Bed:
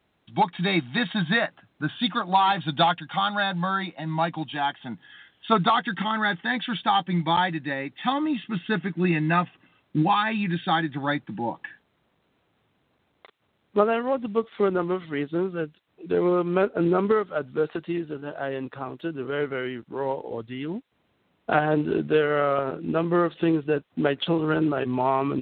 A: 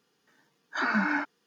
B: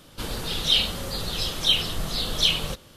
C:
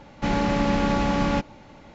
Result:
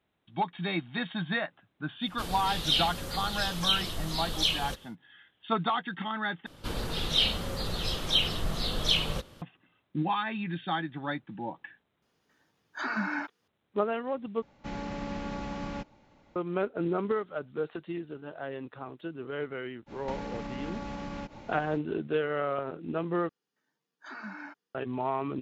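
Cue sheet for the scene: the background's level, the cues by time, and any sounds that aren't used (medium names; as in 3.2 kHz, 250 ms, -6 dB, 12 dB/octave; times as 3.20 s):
bed -8 dB
2.00 s: add B -6 dB, fades 0.10 s
6.46 s: replace with B -1.5 dB + treble shelf 4.1 kHz -8.5 dB
12.02 s: add A -5 dB
14.42 s: replace with C -14 dB
19.86 s: add C -1 dB, fades 0.05 s + compression 12:1, threshold -33 dBFS
23.29 s: replace with A -15.5 dB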